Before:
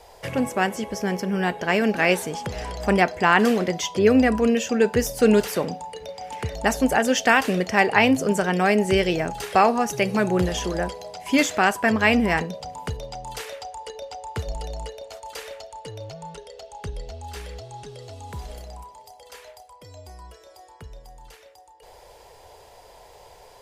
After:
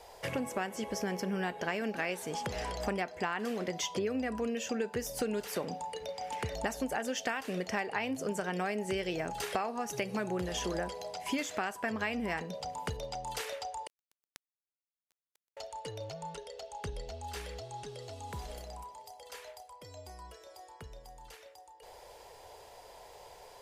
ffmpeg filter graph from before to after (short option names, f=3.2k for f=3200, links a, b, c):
-filter_complex "[0:a]asettb=1/sr,asplit=3[a][b][c];[a]atrim=end=13.874[d];[b]atrim=start=13.87:end=15.57,asetpts=PTS-STARTPTS,afade=t=in:d=0.004:c=qsin,afade=t=out:st=1.696:d=0.004:c=qsin,acompressor=threshold=-34dB:ratio=8:attack=3.2:release=140:knee=1:detection=peak,acrusher=bits=3:mix=0:aa=0.5[e];[c]atrim=start=15.566[f];[d][e]acrossfade=d=0.004:c1=hsin:c2=qsin[g];[g][f]acrossfade=d=0.004:c1=qsin:c2=hsin,lowshelf=f=180:g=-5.5,acompressor=threshold=-27dB:ratio=10,volume=-3.5dB"